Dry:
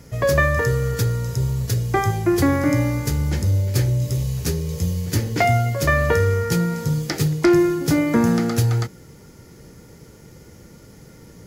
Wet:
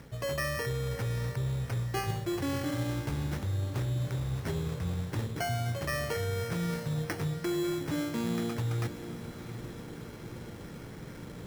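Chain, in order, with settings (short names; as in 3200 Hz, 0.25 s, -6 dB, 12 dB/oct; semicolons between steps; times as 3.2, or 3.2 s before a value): bell 75 Hz -8 dB 0.23 oct; reverse; compressor 6:1, threshold -31 dBFS, peak gain reduction 18.5 dB; reverse; sample-and-hold 12×; diffused feedback echo 0.719 s, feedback 61%, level -13 dB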